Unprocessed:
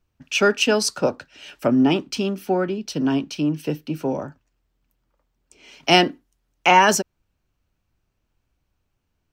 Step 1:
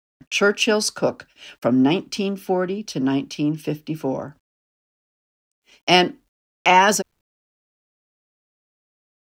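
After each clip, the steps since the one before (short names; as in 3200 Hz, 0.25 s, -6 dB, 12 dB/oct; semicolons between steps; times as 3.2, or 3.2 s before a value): gate -45 dBFS, range -29 dB; requantised 12-bit, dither none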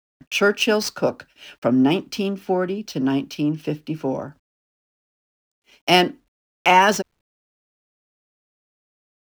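median filter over 5 samples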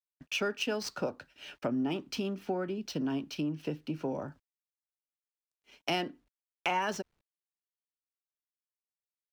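high shelf 9000 Hz -6 dB; compressor 3:1, threshold -27 dBFS, peak gain reduction 13 dB; gain -5 dB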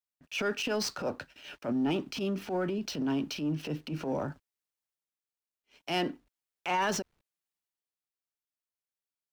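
transient shaper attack -11 dB, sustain +5 dB; sample leveller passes 1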